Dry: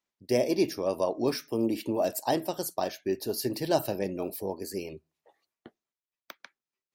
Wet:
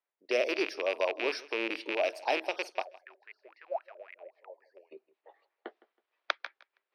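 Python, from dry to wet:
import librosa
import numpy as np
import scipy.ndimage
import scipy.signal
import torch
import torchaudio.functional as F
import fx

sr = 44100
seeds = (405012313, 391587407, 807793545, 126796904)

y = fx.rattle_buzz(x, sr, strikes_db=-37.0, level_db=-19.0)
y = fx.recorder_agc(y, sr, target_db=-19.5, rise_db_per_s=15.0, max_gain_db=30)
y = fx.env_lowpass(y, sr, base_hz=2300.0, full_db=-22.0)
y = scipy.signal.sosfilt(scipy.signal.butter(4, 400.0, 'highpass', fs=sr, output='sos'), y)
y = fx.wah_lfo(y, sr, hz=3.7, low_hz=540.0, high_hz=2100.0, q=15.0, at=(2.81, 4.91), fade=0.02)
y = scipy.signal.savgol_filter(y, 15, 4, mode='constant')
y = fx.echo_feedback(y, sr, ms=161, feedback_pct=25, wet_db=-21.0)
y = y * librosa.db_to_amplitude(-2.0)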